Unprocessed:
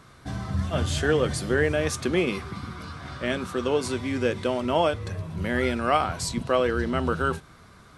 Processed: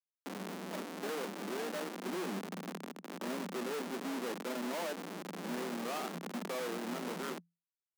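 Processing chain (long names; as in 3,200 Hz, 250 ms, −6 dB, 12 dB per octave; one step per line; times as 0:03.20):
high-frequency loss of the air 500 metres
comparator with hysteresis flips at −32.5 dBFS
compressor whose output falls as the input rises −36 dBFS, ratio −1
Chebyshev high-pass filter 170 Hz, order 10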